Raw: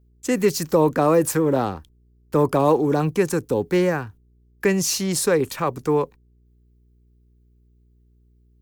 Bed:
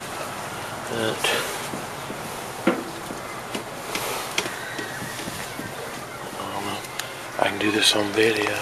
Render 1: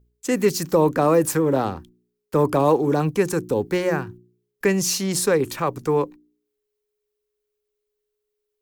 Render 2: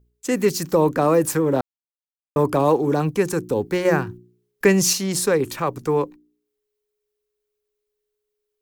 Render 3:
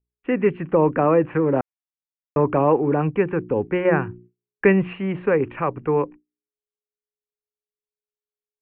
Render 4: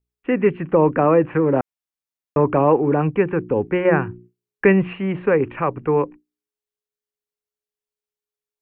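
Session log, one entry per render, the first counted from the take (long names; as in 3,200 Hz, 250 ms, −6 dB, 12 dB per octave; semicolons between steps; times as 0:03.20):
hum removal 60 Hz, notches 6
0:01.61–0:02.36: silence; 0:03.85–0:04.93: clip gain +4 dB
noise gate with hold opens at −36 dBFS; Butterworth low-pass 2,800 Hz 72 dB per octave
level +2 dB; brickwall limiter −3 dBFS, peak gain reduction 1 dB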